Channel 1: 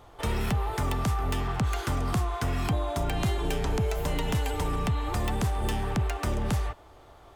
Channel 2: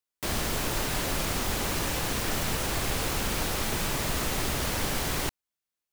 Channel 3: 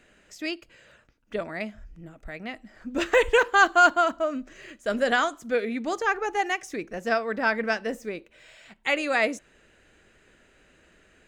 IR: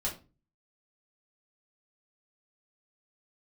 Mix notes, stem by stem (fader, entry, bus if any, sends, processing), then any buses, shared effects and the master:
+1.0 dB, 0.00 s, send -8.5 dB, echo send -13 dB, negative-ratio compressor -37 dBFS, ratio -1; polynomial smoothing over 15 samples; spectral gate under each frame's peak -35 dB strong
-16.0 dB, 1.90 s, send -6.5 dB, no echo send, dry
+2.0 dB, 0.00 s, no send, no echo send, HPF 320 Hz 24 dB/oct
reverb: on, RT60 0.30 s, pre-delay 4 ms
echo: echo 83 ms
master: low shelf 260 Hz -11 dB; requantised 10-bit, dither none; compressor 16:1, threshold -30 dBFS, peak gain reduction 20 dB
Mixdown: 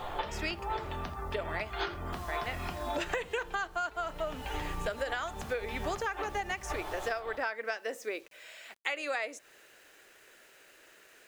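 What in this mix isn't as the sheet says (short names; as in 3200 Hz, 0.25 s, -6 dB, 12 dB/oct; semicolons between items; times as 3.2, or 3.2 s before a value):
stem 2 -16.0 dB -> -26.5 dB; reverb return +6.0 dB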